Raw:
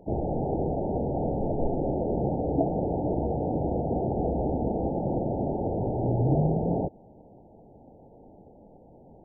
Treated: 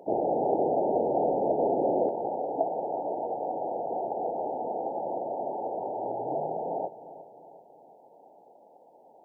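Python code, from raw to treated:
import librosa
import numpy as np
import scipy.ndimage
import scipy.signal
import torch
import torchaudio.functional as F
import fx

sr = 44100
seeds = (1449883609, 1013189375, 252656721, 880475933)

y = fx.highpass(x, sr, hz=fx.steps((0.0, 460.0), (2.09, 880.0)), slope=12)
y = fx.echo_feedback(y, sr, ms=358, feedback_pct=49, wet_db=-15.0)
y = F.gain(torch.from_numpy(y), 7.0).numpy()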